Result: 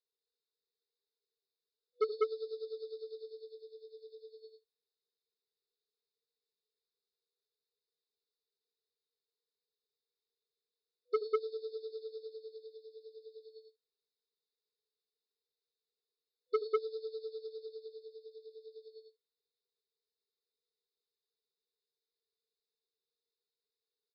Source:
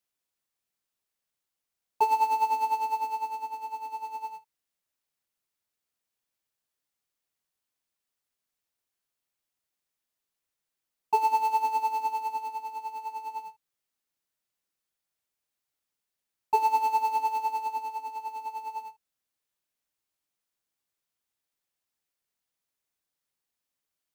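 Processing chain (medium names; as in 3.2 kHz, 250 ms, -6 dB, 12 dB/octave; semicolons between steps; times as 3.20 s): brick-wall FIR band-pass 380–5300 Hz; three-band isolator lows -13 dB, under 510 Hz, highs -21 dB, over 2.5 kHz; on a send: loudspeakers at several distances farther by 27 m -9 dB, 68 m 0 dB; on the sum: FFT band-reject 490–3500 Hz; transformer saturation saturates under 730 Hz; trim +11.5 dB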